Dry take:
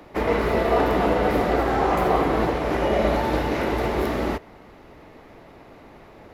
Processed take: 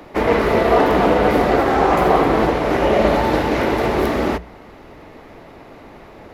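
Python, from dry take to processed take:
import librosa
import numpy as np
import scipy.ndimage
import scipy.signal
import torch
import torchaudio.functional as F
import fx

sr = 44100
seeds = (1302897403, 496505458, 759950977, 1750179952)

y = fx.hum_notches(x, sr, base_hz=60, count=3)
y = fx.doppler_dist(y, sr, depth_ms=0.16)
y = y * librosa.db_to_amplitude(6.0)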